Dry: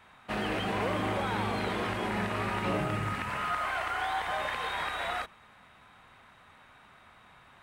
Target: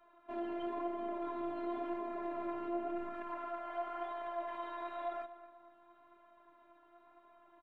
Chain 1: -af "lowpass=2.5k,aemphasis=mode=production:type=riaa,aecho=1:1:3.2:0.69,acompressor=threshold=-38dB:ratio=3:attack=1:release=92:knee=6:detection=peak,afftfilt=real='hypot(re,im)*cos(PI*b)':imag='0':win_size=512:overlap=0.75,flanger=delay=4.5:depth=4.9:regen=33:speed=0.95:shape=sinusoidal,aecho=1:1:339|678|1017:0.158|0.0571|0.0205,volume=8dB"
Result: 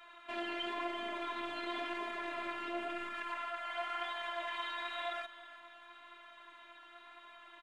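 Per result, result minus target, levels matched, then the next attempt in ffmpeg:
2000 Hz band +11.0 dB; echo 98 ms late
-af "lowpass=650,aemphasis=mode=production:type=riaa,aecho=1:1:3.2:0.69,acompressor=threshold=-38dB:ratio=3:attack=1:release=92:knee=6:detection=peak,afftfilt=real='hypot(re,im)*cos(PI*b)':imag='0':win_size=512:overlap=0.75,flanger=delay=4.5:depth=4.9:regen=33:speed=0.95:shape=sinusoidal,aecho=1:1:339|678|1017:0.158|0.0571|0.0205,volume=8dB"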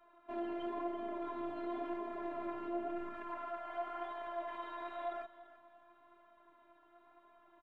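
echo 98 ms late
-af "lowpass=650,aemphasis=mode=production:type=riaa,aecho=1:1:3.2:0.69,acompressor=threshold=-38dB:ratio=3:attack=1:release=92:knee=6:detection=peak,afftfilt=real='hypot(re,im)*cos(PI*b)':imag='0':win_size=512:overlap=0.75,flanger=delay=4.5:depth=4.9:regen=33:speed=0.95:shape=sinusoidal,aecho=1:1:241|482|723:0.158|0.0571|0.0205,volume=8dB"

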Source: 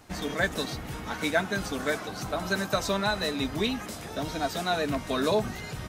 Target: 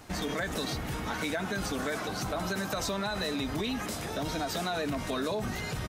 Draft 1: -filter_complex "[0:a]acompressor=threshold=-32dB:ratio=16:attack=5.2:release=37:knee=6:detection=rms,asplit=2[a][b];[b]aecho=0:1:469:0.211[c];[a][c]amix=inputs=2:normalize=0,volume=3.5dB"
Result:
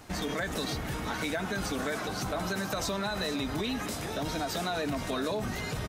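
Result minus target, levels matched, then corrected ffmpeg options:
echo-to-direct +9.5 dB
-filter_complex "[0:a]acompressor=threshold=-32dB:ratio=16:attack=5.2:release=37:knee=6:detection=rms,asplit=2[a][b];[b]aecho=0:1:469:0.0708[c];[a][c]amix=inputs=2:normalize=0,volume=3.5dB"

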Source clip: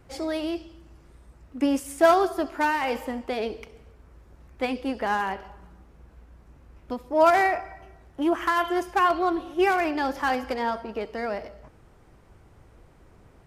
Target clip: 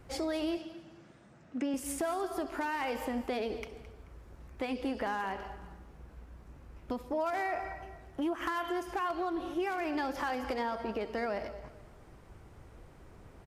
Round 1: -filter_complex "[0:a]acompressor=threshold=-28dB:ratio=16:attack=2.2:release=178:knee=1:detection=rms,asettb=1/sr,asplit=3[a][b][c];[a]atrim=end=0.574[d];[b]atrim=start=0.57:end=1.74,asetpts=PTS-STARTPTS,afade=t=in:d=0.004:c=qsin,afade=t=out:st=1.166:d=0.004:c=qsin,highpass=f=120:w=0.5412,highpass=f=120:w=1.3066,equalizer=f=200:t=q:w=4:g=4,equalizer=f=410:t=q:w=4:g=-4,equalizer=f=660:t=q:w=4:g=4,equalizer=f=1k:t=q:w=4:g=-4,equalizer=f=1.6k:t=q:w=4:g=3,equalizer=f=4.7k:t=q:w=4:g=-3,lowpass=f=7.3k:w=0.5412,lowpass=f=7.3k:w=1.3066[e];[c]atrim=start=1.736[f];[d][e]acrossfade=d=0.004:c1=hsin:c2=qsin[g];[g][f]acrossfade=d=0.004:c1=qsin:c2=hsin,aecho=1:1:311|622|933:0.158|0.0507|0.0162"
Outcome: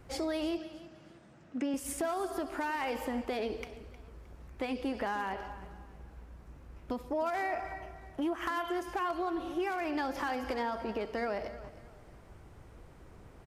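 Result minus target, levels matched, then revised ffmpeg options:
echo 94 ms late
-filter_complex "[0:a]acompressor=threshold=-28dB:ratio=16:attack=2.2:release=178:knee=1:detection=rms,asettb=1/sr,asplit=3[a][b][c];[a]atrim=end=0.574[d];[b]atrim=start=0.57:end=1.74,asetpts=PTS-STARTPTS,afade=t=in:d=0.004:c=qsin,afade=t=out:st=1.166:d=0.004:c=qsin,highpass=f=120:w=0.5412,highpass=f=120:w=1.3066,equalizer=f=200:t=q:w=4:g=4,equalizer=f=410:t=q:w=4:g=-4,equalizer=f=660:t=q:w=4:g=4,equalizer=f=1k:t=q:w=4:g=-4,equalizer=f=1.6k:t=q:w=4:g=3,equalizer=f=4.7k:t=q:w=4:g=-3,lowpass=f=7.3k:w=0.5412,lowpass=f=7.3k:w=1.3066[e];[c]atrim=start=1.736[f];[d][e]acrossfade=d=0.004:c1=hsin:c2=qsin[g];[g][f]acrossfade=d=0.004:c1=qsin:c2=hsin,aecho=1:1:217|434|651:0.158|0.0507|0.0162"

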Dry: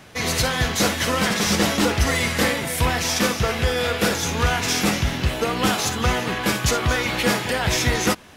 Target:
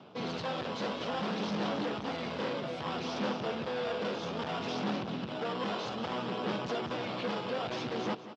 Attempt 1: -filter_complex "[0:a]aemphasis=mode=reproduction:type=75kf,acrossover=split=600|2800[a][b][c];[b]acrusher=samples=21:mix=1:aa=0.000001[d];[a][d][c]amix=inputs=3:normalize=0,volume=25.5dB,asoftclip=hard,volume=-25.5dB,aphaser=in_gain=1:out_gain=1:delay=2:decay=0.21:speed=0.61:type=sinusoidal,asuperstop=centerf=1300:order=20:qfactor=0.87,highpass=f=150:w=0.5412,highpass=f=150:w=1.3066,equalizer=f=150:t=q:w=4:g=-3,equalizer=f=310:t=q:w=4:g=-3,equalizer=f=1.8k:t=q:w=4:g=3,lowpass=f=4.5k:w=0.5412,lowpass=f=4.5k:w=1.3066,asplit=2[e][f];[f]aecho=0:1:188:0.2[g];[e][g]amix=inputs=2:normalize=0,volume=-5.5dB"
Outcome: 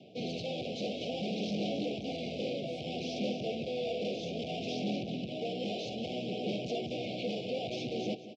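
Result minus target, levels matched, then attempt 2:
1000 Hz band -6.5 dB
-filter_complex "[0:a]aemphasis=mode=reproduction:type=75kf,acrossover=split=600|2800[a][b][c];[b]acrusher=samples=21:mix=1:aa=0.000001[d];[a][d][c]amix=inputs=3:normalize=0,volume=25.5dB,asoftclip=hard,volume=-25.5dB,aphaser=in_gain=1:out_gain=1:delay=2:decay=0.21:speed=0.61:type=sinusoidal,highpass=f=150:w=0.5412,highpass=f=150:w=1.3066,equalizer=f=150:t=q:w=4:g=-3,equalizer=f=310:t=q:w=4:g=-3,equalizer=f=1.8k:t=q:w=4:g=3,lowpass=f=4.5k:w=0.5412,lowpass=f=4.5k:w=1.3066,asplit=2[e][f];[f]aecho=0:1:188:0.2[g];[e][g]amix=inputs=2:normalize=0,volume=-5.5dB"

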